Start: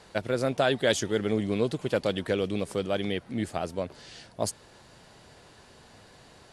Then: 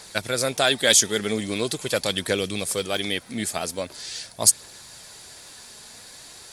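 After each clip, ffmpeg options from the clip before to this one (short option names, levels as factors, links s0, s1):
-af "bandreject=f=2900:w=11,aphaser=in_gain=1:out_gain=1:delay=5:decay=0.25:speed=0.43:type=triangular,crystalizer=i=8.5:c=0,volume=0.891"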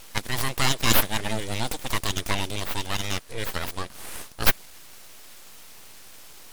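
-af "aeval=exprs='abs(val(0))':c=same"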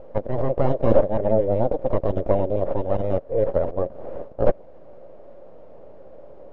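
-filter_complex "[0:a]asplit=2[s0][s1];[s1]alimiter=limit=0.355:level=0:latency=1:release=369,volume=1[s2];[s0][s2]amix=inputs=2:normalize=0,acrusher=bits=7:mix=0:aa=0.000001,lowpass=f=560:t=q:w=6.7,volume=0.891"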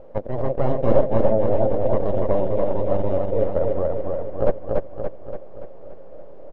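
-af "aecho=1:1:287|574|861|1148|1435|1722|2009|2296:0.708|0.389|0.214|0.118|0.0648|0.0356|0.0196|0.0108,volume=0.841"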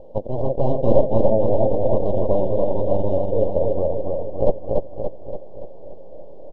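-af "asuperstop=centerf=1700:order=8:qfactor=0.81,volume=1.19"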